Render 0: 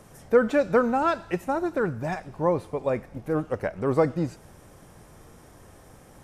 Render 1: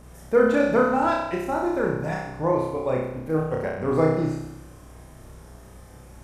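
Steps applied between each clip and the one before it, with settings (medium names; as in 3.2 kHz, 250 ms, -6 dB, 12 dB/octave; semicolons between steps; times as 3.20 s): mains buzz 60 Hz, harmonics 4, -47 dBFS -3 dB/octave; on a send: flutter echo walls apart 5.4 m, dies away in 0.88 s; on the sum: trim -2 dB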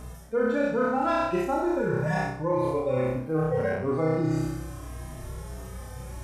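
harmonic-percussive separation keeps harmonic; reverse; compression 6:1, threshold -31 dBFS, peak gain reduction 16.5 dB; reverse; trim +8 dB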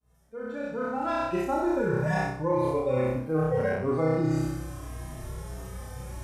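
fade-in on the opening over 1.69 s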